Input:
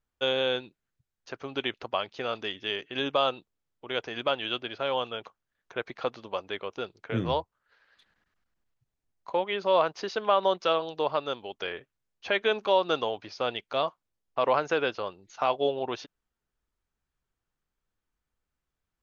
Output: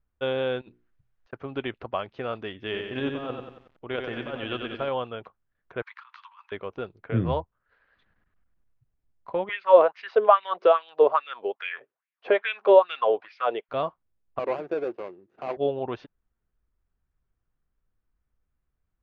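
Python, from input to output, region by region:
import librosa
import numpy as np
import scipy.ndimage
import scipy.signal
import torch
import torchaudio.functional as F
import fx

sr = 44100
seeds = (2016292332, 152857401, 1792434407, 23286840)

y = fx.chain(x, sr, fx.peak_eq(hz=130.0, db=-10.5, octaves=2.7),
    fx.hum_notches(base_hz=60, count=8),
    fx.over_compress(threshold_db=-56.0, ratio=-0.5), at=(0.61, 1.33))
y = fx.chain(y, sr, fx.over_compress(threshold_db=-29.0, ratio=-0.5),
    fx.echo_crushed(ms=92, feedback_pct=55, bits=9, wet_db=-5), at=(2.59, 4.89))
y = fx.chain(y, sr, fx.steep_highpass(hz=910.0, slope=96),
    fx.over_compress(threshold_db=-47.0, ratio=-1.0), at=(5.82, 6.52))
y = fx.chain(y, sr, fx.lowpass(hz=5100.0, slope=12),
    fx.low_shelf(hz=170.0, db=5.5),
    fx.filter_lfo_highpass(shape='sine', hz=2.4, low_hz=390.0, high_hz=2400.0, q=3.9), at=(9.49, 13.69))
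y = fx.chain(y, sr, fx.median_filter(points=41),
    fx.highpass(hz=270.0, slope=12),
    fx.peak_eq(hz=360.0, db=9.5, octaves=0.2), at=(14.39, 15.57))
y = scipy.signal.sosfilt(scipy.signal.butter(2, 2100.0, 'lowpass', fs=sr, output='sos'), y)
y = fx.low_shelf(y, sr, hz=160.0, db=10.5)
y = fx.notch(y, sr, hz=870.0, q=18.0)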